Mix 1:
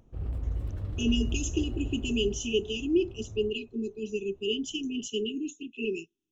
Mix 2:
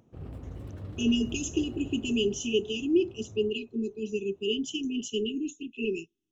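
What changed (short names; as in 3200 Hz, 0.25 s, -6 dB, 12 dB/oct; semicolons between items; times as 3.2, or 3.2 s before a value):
background: add HPF 150 Hz 12 dB/oct; master: add low shelf 200 Hz +4.5 dB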